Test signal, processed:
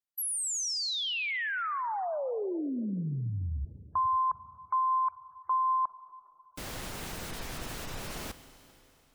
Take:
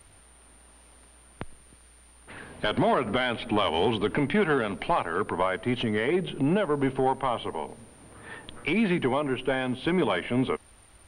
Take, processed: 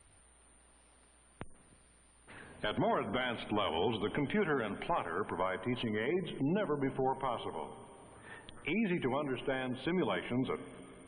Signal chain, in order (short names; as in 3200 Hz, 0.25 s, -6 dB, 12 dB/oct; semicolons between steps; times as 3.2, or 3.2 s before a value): Schroeder reverb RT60 3.2 s, combs from 33 ms, DRR 12.5 dB; spectral gate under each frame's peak -30 dB strong; gain -8.5 dB